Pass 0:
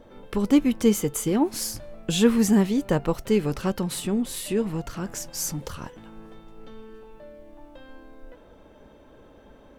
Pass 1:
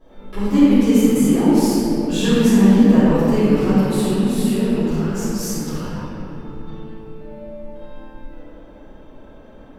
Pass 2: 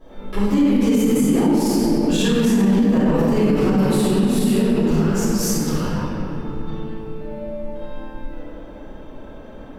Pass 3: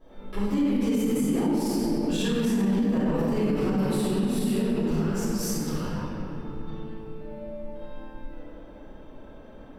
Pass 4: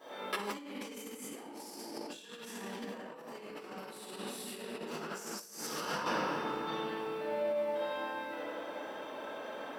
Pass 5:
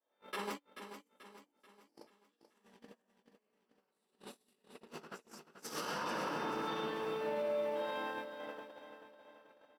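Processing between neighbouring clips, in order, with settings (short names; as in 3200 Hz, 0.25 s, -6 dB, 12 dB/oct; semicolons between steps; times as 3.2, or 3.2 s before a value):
reverb RT60 3.4 s, pre-delay 3 ms, DRR -15.5 dB; gain -12.5 dB
in parallel at -2.5 dB: compressor, threshold -21 dBFS, peak gain reduction 13.5 dB; on the sum: limiter -9 dBFS, peak gain reduction 8.5 dB
notch 6700 Hz, Q 13; gain -8 dB
Bessel high-pass 800 Hz, order 2; negative-ratio compressor -44 dBFS, ratio -0.5; gain +6 dB
gate -38 dBFS, range -38 dB; limiter -31.5 dBFS, peak gain reduction 8.5 dB; on a send: feedback echo 0.435 s, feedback 45%, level -10 dB; on the sum: gain +1.5 dB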